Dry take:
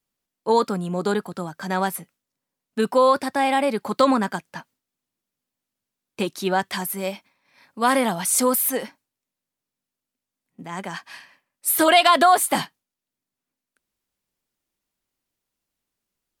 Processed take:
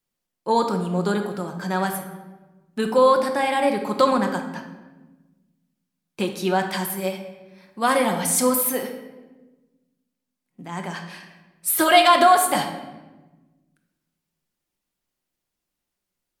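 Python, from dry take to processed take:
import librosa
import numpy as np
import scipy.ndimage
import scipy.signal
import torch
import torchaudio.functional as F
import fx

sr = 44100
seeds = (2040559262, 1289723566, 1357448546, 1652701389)

y = fx.room_shoebox(x, sr, seeds[0], volume_m3=740.0, walls='mixed', distance_m=0.92)
y = F.gain(torch.from_numpy(y), -1.5).numpy()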